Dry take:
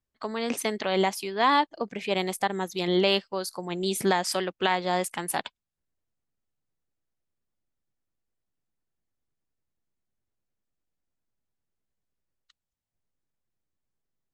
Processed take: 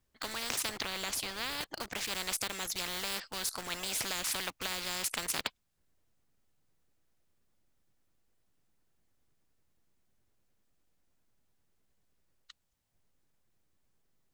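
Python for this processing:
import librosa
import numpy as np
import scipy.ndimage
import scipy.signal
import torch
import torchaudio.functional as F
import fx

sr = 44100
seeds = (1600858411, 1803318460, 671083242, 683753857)

p1 = fx.quant_dither(x, sr, seeds[0], bits=6, dither='none')
p2 = x + F.gain(torch.from_numpy(p1), -10.5).numpy()
p3 = fx.tilt_shelf(p2, sr, db=5.5, hz=1200.0, at=(0.69, 1.61))
p4 = fx.spectral_comp(p3, sr, ratio=10.0)
y = F.gain(torch.from_numpy(p4), -8.0).numpy()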